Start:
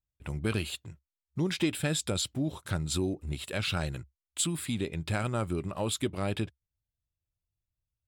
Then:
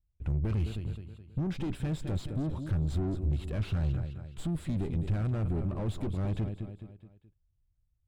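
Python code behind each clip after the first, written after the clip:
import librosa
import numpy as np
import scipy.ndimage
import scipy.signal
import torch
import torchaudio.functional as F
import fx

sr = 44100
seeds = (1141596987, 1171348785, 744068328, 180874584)

y = fx.echo_feedback(x, sr, ms=212, feedback_pct=43, wet_db=-14.0)
y = fx.tube_stage(y, sr, drive_db=36.0, bias=0.4)
y = fx.tilt_eq(y, sr, slope=-4.0)
y = F.gain(torch.from_numpy(y), -1.5).numpy()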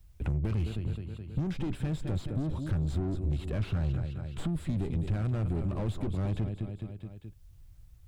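y = fx.band_squash(x, sr, depth_pct=70)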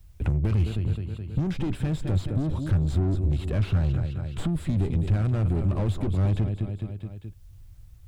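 y = fx.peak_eq(x, sr, hz=95.0, db=5.0, octaves=0.27)
y = F.gain(torch.from_numpy(y), 5.0).numpy()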